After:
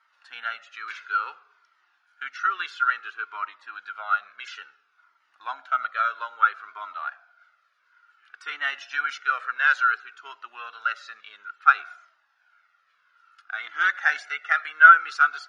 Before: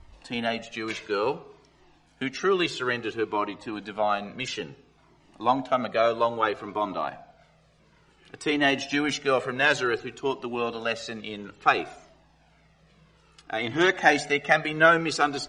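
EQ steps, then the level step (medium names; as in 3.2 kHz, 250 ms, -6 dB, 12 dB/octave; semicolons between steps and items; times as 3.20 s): resonant high-pass 1.4 kHz, resonance Q 12; peaking EQ 8.1 kHz -14.5 dB 0.3 oct; -9.0 dB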